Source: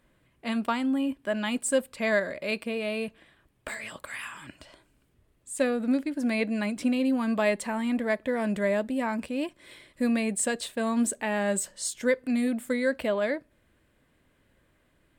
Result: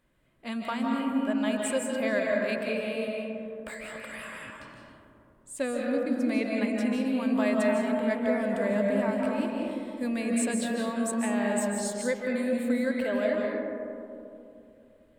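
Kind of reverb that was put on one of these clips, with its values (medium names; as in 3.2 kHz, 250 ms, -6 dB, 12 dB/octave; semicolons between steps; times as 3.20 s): algorithmic reverb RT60 2.8 s, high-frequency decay 0.25×, pre-delay 115 ms, DRR -1.5 dB; trim -5 dB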